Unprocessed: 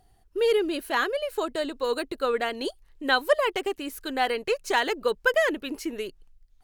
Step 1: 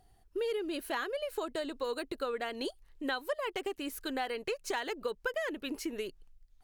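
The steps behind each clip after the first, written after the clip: compression 5:1, threshold -29 dBFS, peak gain reduction 13 dB; trim -3 dB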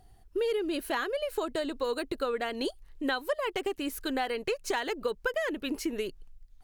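bass shelf 230 Hz +4.5 dB; trim +3.5 dB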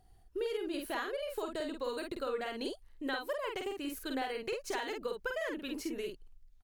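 doubling 49 ms -4 dB; trim -7 dB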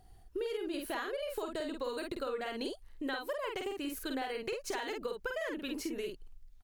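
compression 2:1, threshold -42 dBFS, peak gain reduction 6.5 dB; trim +4.5 dB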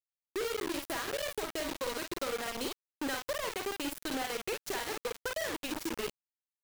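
bit crusher 6-bit

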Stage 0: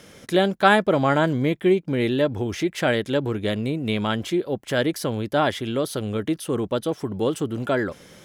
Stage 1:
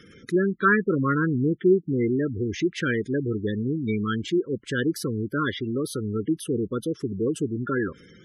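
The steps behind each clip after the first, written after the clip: Chebyshev band-stop 430–1200 Hz, order 2; spectral gate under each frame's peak -15 dB strong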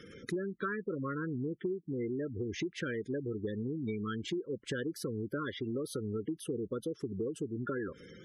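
peaking EQ 570 Hz +7.5 dB 0.86 oct; compression 10:1, threshold -30 dBFS, peak gain reduction 18 dB; trim -3 dB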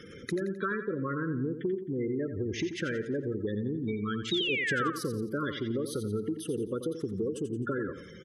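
painted sound fall, 4.31–4.90 s, 1.1–3.9 kHz -35 dBFS; feedback delay 87 ms, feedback 43%, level -9.5 dB; trim +3.5 dB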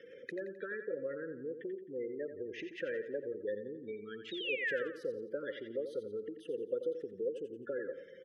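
vowel filter e; trim +4.5 dB

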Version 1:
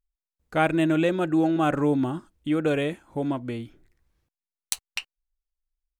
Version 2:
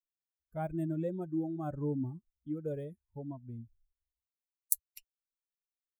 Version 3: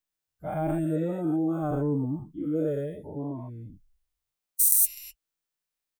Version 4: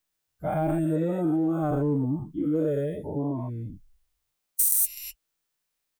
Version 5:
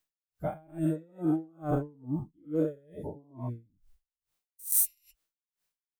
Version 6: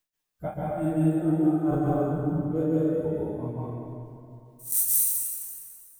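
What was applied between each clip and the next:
expander on every frequency bin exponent 2; FFT filter 100 Hz 0 dB, 310 Hz -8 dB, 570 Hz -8 dB, 3 kHz -29 dB, 13 kHz +11 dB; trim -2 dB
every event in the spectrogram widened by 240 ms; comb 6.6 ms, depth 41%; trim +1.5 dB
in parallel at -11 dB: overload inside the chain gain 22.5 dB; on the sum: compression 2:1, threshold -30 dBFS, peak gain reduction 8 dB; trim +4.5 dB
logarithmic tremolo 2.3 Hz, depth 33 dB
plate-style reverb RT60 2.6 s, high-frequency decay 0.7×, pre-delay 120 ms, DRR -6 dB

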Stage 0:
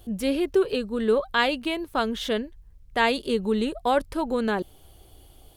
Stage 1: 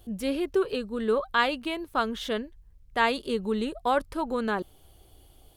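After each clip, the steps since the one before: dynamic bell 1.2 kHz, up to +6 dB, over -39 dBFS, Q 1.9; trim -4 dB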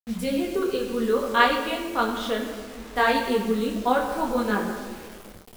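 simulated room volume 2400 m³, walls mixed, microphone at 1.8 m; bit crusher 7-bit; detune thickener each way 23 cents; trim +4 dB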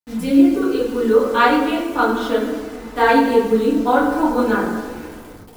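FDN reverb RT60 0.4 s, low-frequency decay 1.4×, high-frequency decay 0.35×, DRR -5 dB; trim -1 dB

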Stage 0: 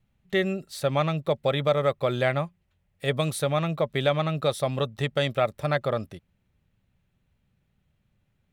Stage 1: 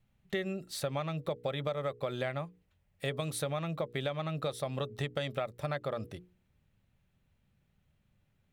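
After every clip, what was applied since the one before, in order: hum notches 60/120/180/240/300/360/420/480 Hz; compression, threshold -30 dBFS, peak gain reduction 12.5 dB; trim -1.5 dB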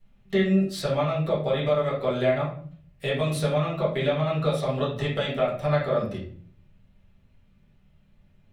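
reverberation RT60 0.50 s, pre-delay 4 ms, DRR -8.5 dB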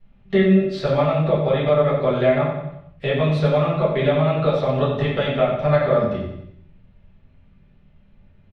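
distance through air 210 m; feedback delay 91 ms, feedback 46%, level -8 dB; trim +6 dB

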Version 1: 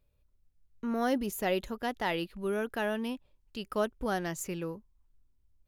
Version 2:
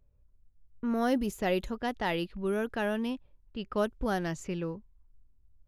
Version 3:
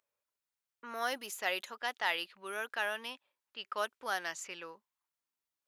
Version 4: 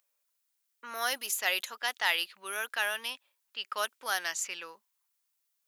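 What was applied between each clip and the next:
level-controlled noise filter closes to 1.3 kHz, open at -27.5 dBFS; bass shelf 180 Hz +7 dB; wow and flutter 25 cents
high-pass 1.1 kHz 12 dB/octave; trim +3 dB
tilt EQ +3 dB/octave; trim +2 dB

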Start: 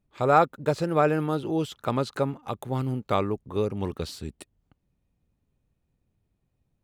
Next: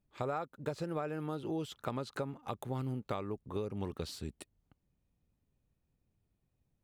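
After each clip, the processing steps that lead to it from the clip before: compression 12:1, threshold -28 dBFS, peak gain reduction 15 dB; trim -5 dB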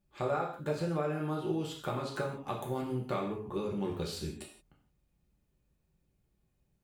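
gated-style reverb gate 200 ms falling, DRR -2.5 dB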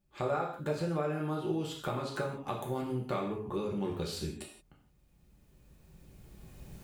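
recorder AGC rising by 11 dB/s

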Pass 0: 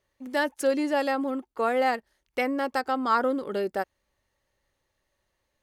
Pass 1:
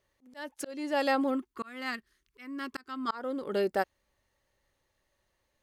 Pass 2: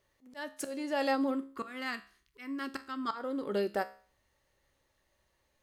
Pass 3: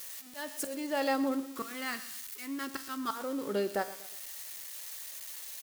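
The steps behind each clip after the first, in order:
time-frequency box 1.36–3.08 s, 410–1000 Hz -14 dB; dynamic bell 3.8 kHz, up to +4 dB, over -42 dBFS, Q 0.94; slow attack 498 ms
in parallel at +2 dB: compression, threshold -38 dBFS, peak gain reduction 14.5 dB; on the sum: feedback comb 68 Hz, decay 0.45 s, harmonics all, mix 60%
zero-crossing glitches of -34.5 dBFS; feedback delay 121 ms, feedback 41%, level -16.5 dB

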